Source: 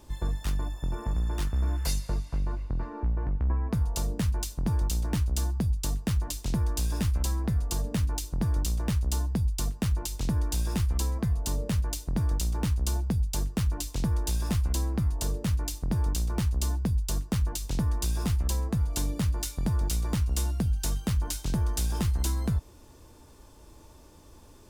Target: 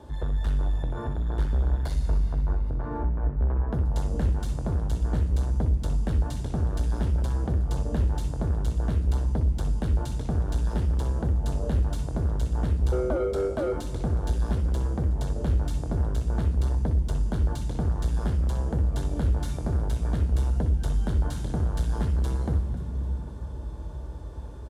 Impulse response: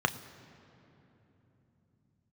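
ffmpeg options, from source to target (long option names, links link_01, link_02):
-filter_complex "[0:a]asplit=5[link_01][link_02][link_03][link_04][link_05];[link_02]adelay=265,afreqshift=52,volume=-21dB[link_06];[link_03]adelay=530,afreqshift=104,volume=-26.8dB[link_07];[link_04]adelay=795,afreqshift=156,volume=-32.7dB[link_08];[link_05]adelay=1060,afreqshift=208,volume=-38.5dB[link_09];[link_01][link_06][link_07][link_08][link_09]amix=inputs=5:normalize=0,asplit=3[link_10][link_11][link_12];[link_10]afade=type=out:start_time=12.91:duration=0.02[link_13];[link_11]aeval=exprs='val(0)*sin(2*PI*440*n/s)':channel_layout=same,afade=type=in:start_time=12.91:duration=0.02,afade=type=out:start_time=13.72:duration=0.02[link_14];[link_12]afade=type=in:start_time=13.72:duration=0.02[link_15];[link_13][link_14][link_15]amix=inputs=3:normalize=0,asoftclip=type=tanh:threshold=-32dB[link_16];[1:a]atrim=start_sample=2205,asetrate=22932,aresample=44100[link_17];[link_16][link_17]afir=irnorm=-1:irlink=0,volume=-8dB"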